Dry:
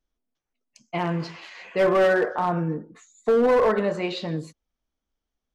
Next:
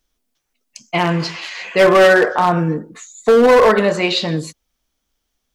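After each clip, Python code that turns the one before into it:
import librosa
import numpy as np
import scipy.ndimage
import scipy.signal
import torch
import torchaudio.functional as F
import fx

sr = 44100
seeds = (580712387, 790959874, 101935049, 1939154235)

y = fx.high_shelf(x, sr, hz=2000.0, db=9.5)
y = y * librosa.db_to_amplitude(8.0)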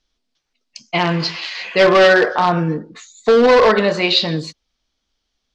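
y = fx.lowpass_res(x, sr, hz=4600.0, q=2.0)
y = y * librosa.db_to_amplitude(-1.0)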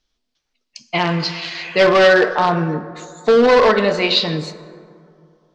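y = fx.rev_plate(x, sr, seeds[0], rt60_s=2.5, hf_ratio=0.4, predelay_ms=0, drr_db=12.0)
y = y * librosa.db_to_amplitude(-1.0)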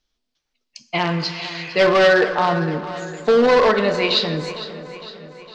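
y = fx.echo_feedback(x, sr, ms=457, feedback_pct=55, wet_db=-14.5)
y = y * librosa.db_to_amplitude(-2.5)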